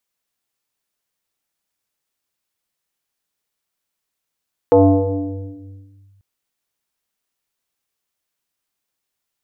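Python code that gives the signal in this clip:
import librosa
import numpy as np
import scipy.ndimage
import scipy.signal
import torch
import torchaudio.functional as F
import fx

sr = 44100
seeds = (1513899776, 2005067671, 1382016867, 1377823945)

y = fx.fm2(sr, length_s=1.49, level_db=-5.0, carrier_hz=98.3, ratio=1.97, index=3.2, index_s=1.42, decay_s=1.92, shape='linear')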